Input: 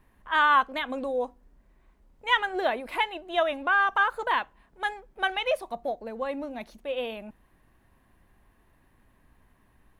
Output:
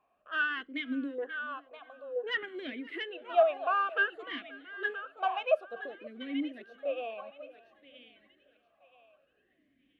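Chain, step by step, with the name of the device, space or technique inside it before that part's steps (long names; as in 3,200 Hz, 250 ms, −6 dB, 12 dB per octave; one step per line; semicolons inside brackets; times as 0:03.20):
0:01.18–0:02.48: octave-band graphic EQ 500/1,000/2,000/4,000 Hz +3/+12/−4/−11 dB
feedback echo with a high-pass in the loop 975 ms, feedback 30%, high-pass 720 Hz, level −9 dB
talk box (tube saturation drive 12 dB, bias 0.45; formant filter swept between two vowels a-i 0.56 Hz)
feedback echo with a swinging delay time 531 ms, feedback 37%, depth 71 cents, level −22 dB
level +6.5 dB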